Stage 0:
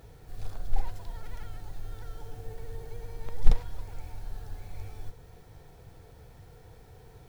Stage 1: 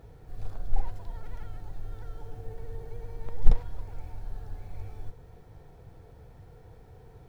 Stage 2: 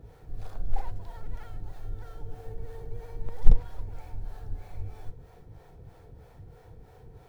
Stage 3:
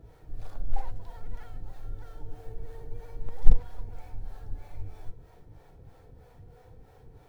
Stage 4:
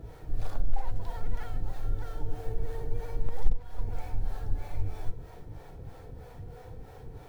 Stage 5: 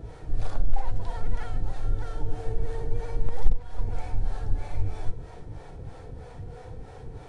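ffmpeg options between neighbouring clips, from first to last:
ffmpeg -i in.wav -af "highshelf=frequency=2100:gain=-10,volume=1dB" out.wav
ffmpeg -i in.wav -filter_complex "[0:a]acrossover=split=430[link_01][link_02];[link_01]aeval=exprs='val(0)*(1-0.7/2+0.7/2*cos(2*PI*3.1*n/s))':channel_layout=same[link_03];[link_02]aeval=exprs='val(0)*(1-0.7/2-0.7/2*cos(2*PI*3.1*n/s))':channel_layout=same[link_04];[link_03][link_04]amix=inputs=2:normalize=0,volume=4dB" out.wav
ffmpeg -i in.wav -af "flanger=delay=3:depth=1.2:regen=72:speed=0.39:shape=triangular,volume=2.5dB" out.wav
ffmpeg -i in.wav -af "acompressor=threshold=-25dB:ratio=4,volume=7.5dB" out.wav
ffmpeg -i in.wav -af "aresample=22050,aresample=44100,volume=4dB" out.wav

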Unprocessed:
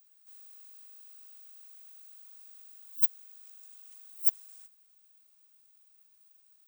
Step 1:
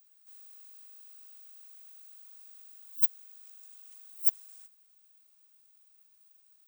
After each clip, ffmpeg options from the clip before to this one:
ffmpeg -i in.wav -af "equalizer=frequency=120:width_type=o:width=0.42:gain=-14.5" out.wav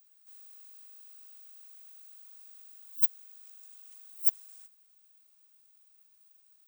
ffmpeg -i in.wav -af anull out.wav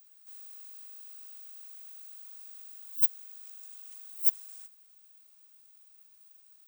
ffmpeg -i in.wav -af "asoftclip=type=tanh:threshold=-18.5dB,volume=4.5dB" out.wav

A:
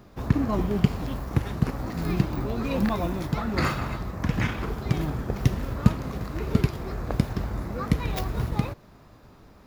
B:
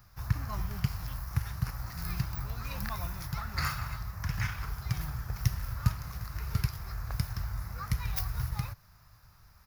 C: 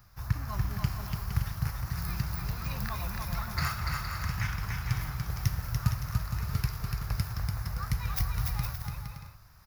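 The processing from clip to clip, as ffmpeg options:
ffmpeg -i in.wav -af "firequalizer=gain_entry='entry(110,0);entry(240,-21);entry(360,-22);entry(820,-7);entry(1400,0);entry(3400,-6);entry(5200,7);entry(7800,-1);entry(11000,10)':delay=0.05:min_phase=1,volume=-4dB" out.wav
ffmpeg -i in.wav -af "aecho=1:1:290|464|568.4|631|668.6:0.631|0.398|0.251|0.158|0.1" out.wav

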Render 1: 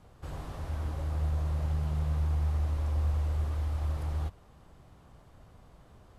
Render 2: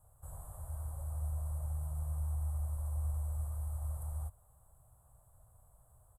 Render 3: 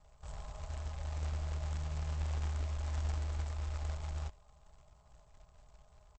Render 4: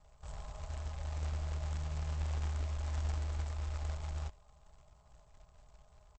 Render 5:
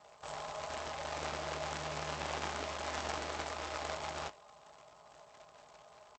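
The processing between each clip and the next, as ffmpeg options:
ffmpeg -i in.wav -af "firequalizer=gain_entry='entry(120,0);entry(190,-17);entry(360,-18);entry(600,-2);entry(1200,-5);entry(2300,-25);entry(3400,-19);entry(5000,-27);entry(8100,15)':delay=0.05:min_phase=1,volume=-7dB" out.wav
ffmpeg -i in.wav -af "aecho=1:1:4.8:0.73,aresample=16000,acrusher=bits=3:mode=log:mix=0:aa=0.000001,aresample=44100,volume=2dB" out.wav
ffmpeg -i in.wav -af anull out.wav
ffmpeg -i in.wav -filter_complex "[0:a]highpass=330,lowpass=6200,asplit=2[link_01][link_02];[link_02]adelay=19,volume=-12.5dB[link_03];[link_01][link_03]amix=inputs=2:normalize=0,volume=11.5dB" out.wav

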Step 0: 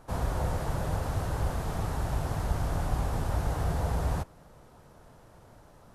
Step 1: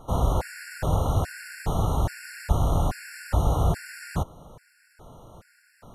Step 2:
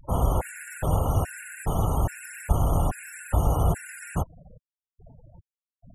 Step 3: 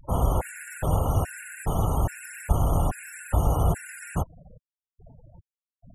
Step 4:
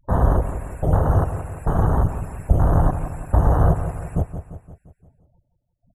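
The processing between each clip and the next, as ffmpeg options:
ffmpeg -i in.wav -af "afftfilt=real='re*gt(sin(2*PI*1.2*pts/sr)*(1-2*mod(floor(b*sr/1024/1400),2)),0)':imag='im*gt(sin(2*PI*1.2*pts/sr)*(1-2*mod(floor(b*sr/1024/1400),2)),0)':win_size=1024:overlap=0.75,volume=7.5dB" out.wav
ffmpeg -i in.wav -af "aexciter=amount=1.6:drive=2.5:freq=2300,afftfilt=real='re*gte(hypot(re,im),0.0178)':imag='im*gte(hypot(re,im),0.0178)':win_size=1024:overlap=0.75" out.wav
ffmpeg -i in.wav -af anull out.wav
ffmpeg -i in.wav -filter_complex "[0:a]afwtdn=0.0501,asplit=2[link_01][link_02];[link_02]aecho=0:1:173|346|519|692|865|1038:0.316|0.168|0.0888|0.0471|0.025|0.0132[link_03];[link_01][link_03]amix=inputs=2:normalize=0,volume=6dB" out.wav

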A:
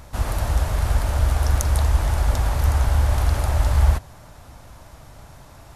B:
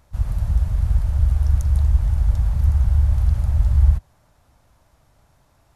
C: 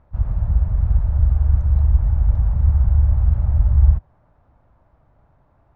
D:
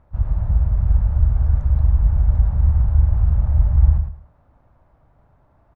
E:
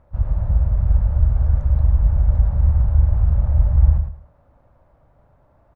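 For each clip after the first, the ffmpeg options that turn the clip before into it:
ffmpeg -i in.wav -af "afwtdn=0.112,volume=2dB" out.wav
ffmpeg -i in.wav -af "lowpass=1300,volume=1.5dB" out.wav
ffmpeg -i in.wav -af "aecho=1:1:107|214|321:0.447|0.0983|0.0216" out.wav
ffmpeg -i in.wav -af "equalizer=frequency=550:width_type=o:width=0.36:gain=6.5" out.wav

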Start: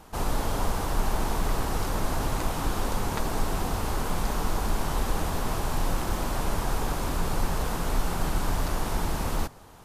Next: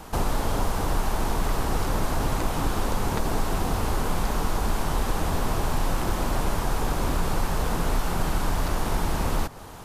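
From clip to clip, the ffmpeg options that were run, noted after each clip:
ffmpeg -i in.wav -filter_complex "[0:a]acrossover=split=630|3900[link_01][link_02][link_03];[link_01]acompressor=threshold=-30dB:ratio=4[link_04];[link_02]acompressor=threshold=-41dB:ratio=4[link_05];[link_03]acompressor=threshold=-49dB:ratio=4[link_06];[link_04][link_05][link_06]amix=inputs=3:normalize=0,volume=8.5dB" out.wav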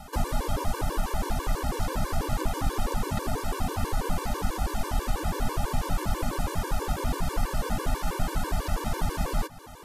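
ffmpeg -i in.wav -af "afftfilt=real='re*gt(sin(2*PI*6.1*pts/sr)*(1-2*mod(floor(b*sr/1024/300),2)),0)':imag='im*gt(sin(2*PI*6.1*pts/sr)*(1-2*mod(floor(b*sr/1024/300),2)),0)':win_size=1024:overlap=0.75" out.wav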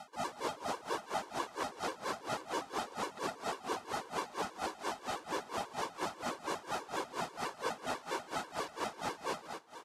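ffmpeg -i in.wav -af "highpass=360,lowpass=7200,aecho=1:1:115|230|345:0.473|0.123|0.032,aeval=exprs='val(0)*pow(10,-20*(0.5-0.5*cos(2*PI*4.3*n/s))/20)':channel_layout=same" out.wav

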